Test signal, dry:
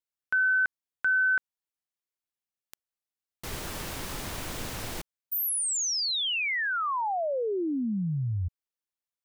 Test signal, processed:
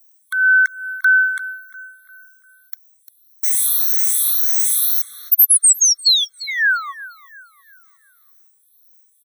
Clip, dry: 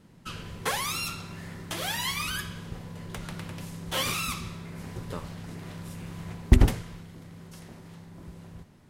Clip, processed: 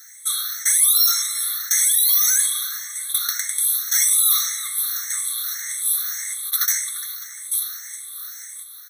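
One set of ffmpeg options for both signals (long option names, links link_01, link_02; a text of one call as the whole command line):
ffmpeg -i in.wav -filter_complex "[0:a]afftfilt=real='re*pow(10,16/40*sin(2*PI*(0.57*log(max(b,1)*sr/1024/100)/log(2)-(1.8)*(pts-256)/sr)))':imag='im*pow(10,16/40*sin(2*PI*(0.57*log(max(b,1)*sr/1024/100)/log(2)-(1.8)*(pts-256)/sr)))':win_size=1024:overlap=0.75,acrossover=split=270[link_01][link_02];[link_01]acompressor=threshold=-35dB:ratio=6:attack=0.29:release=31:knee=2.83:detection=peak[link_03];[link_03][link_02]amix=inputs=2:normalize=0,highshelf=frequency=2400:gain=8,asplit=2[link_04][link_05];[link_05]adelay=348,lowpass=frequency=2200:poles=1,volume=-17.5dB,asplit=2[link_06][link_07];[link_07]adelay=348,lowpass=frequency=2200:poles=1,volume=0.49,asplit=2[link_08][link_09];[link_09]adelay=348,lowpass=frequency=2200:poles=1,volume=0.49,asplit=2[link_10][link_11];[link_11]adelay=348,lowpass=frequency=2200:poles=1,volume=0.49[link_12];[link_06][link_08][link_10][link_12]amix=inputs=4:normalize=0[link_13];[link_04][link_13]amix=inputs=2:normalize=0,crystalizer=i=8:c=0,highshelf=frequency=9600:gain=11,areverse,acompressor=threshold=-9dB:ratio=8:attack=0.58:release=30:knee=6:detection=rms,areverse,afftfilt=real='re*eq(mod(floor(b*sr/1024/1100),2),1)':imag='im*eq(mod(floor(b*sr/1024/1100),2),1)':win_size=1024:overlap=0.75" out.wav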